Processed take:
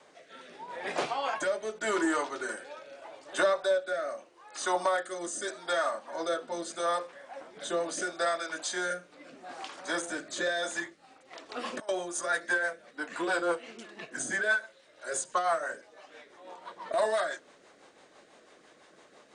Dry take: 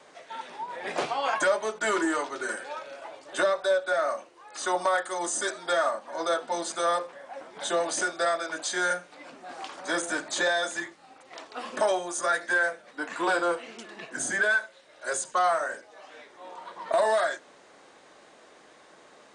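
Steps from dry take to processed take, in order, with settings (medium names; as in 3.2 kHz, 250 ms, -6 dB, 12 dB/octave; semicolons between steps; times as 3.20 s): rotary cabinet horn 0.8 Hz, later 6 Hz, at 10.53 s; 11.49–11.89 s: compressor with a negative ratio -39 dBFS, ratio -1; resampled via 22.05 kHz; trim -1 dB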